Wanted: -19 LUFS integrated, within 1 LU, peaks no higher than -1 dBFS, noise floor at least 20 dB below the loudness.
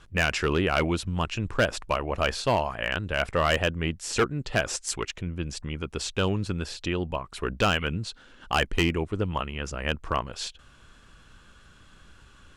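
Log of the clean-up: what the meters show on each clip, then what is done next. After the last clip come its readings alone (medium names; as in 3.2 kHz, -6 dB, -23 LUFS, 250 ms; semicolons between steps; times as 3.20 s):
clipped samples 0.5%; clipping level -15.5 dBFS; loudness -28.0 LUFS; peak level -15.5 dBFS; loudness target -19.0 LUFS
-> clip repair -15.5 dBFS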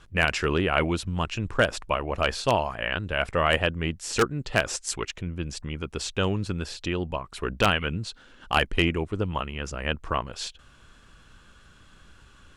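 clipped samples 0.0%; loudness -27.0 LUFS; peak level -6.5 dBFS; loudness target -19.0 LUFS
-> trim +8 dB; peak limiter -1 dBFS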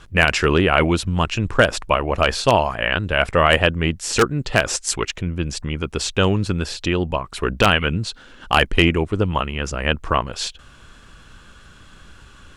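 loudness -19.5 LUFS; peak level -1.0 dBFS; noise floor -46 dBFS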